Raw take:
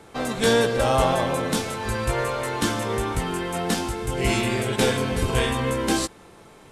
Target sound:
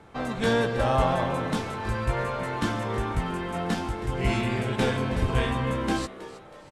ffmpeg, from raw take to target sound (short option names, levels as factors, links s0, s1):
-filter_complex "[0:a]lowpass=f=1600:p=1,equalizer=f=410:t=o:w=1.4:g=-5.5,asplit=2[s0][s1];[s1]asplit=4[s2][s3][s4][s5];[s2]adelay=320,afreqshift=130,volume=0.158[s6];[s3]adelay=640,afreqshift=260,volume=0.0684[s7];[s4]adelay=960,afreqshift=390,volume=0.0292[s8];[s5]adelay=1280,afreqshift=520,volume=0.0126[s9];[s6][s7][s8][s9]amix=inputs=4:normalize=0[s10];[s0][s10]amix=inputs=2:normalize=0"